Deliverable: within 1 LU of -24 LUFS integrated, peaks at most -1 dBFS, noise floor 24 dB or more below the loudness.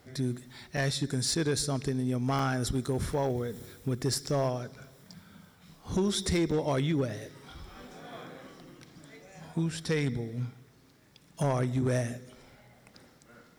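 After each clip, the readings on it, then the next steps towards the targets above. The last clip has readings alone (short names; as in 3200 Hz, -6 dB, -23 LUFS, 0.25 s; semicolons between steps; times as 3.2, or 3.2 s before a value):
clipped 0.9%; flat tops at -22.0 dBFS; dropouts 4; longest dropout 4.5 ms; loudness -31.0 LUFS; peak -22.0 dBFS; loudness target -24.0 LUFS
-> clip repair -22 dBFS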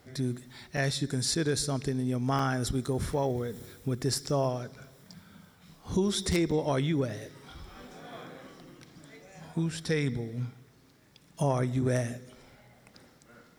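clipped 0.0%; dropouts 4; longest dropout 4.5 ms
-> interpolate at 0.77/1.35/2.39/6.51, 4.5 ms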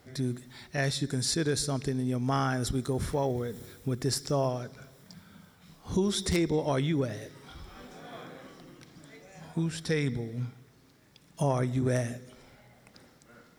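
dropouts 0; loudness -30.5 LUFS; peak -13.0 dBFS; loudness target -24.0 LUFS
-> gain +6.5 dB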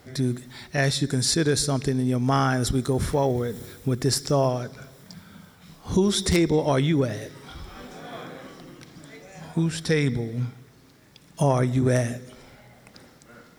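loudness -24.0 LUFS; peak -6.5 dBFS; noise floor -54 dBFS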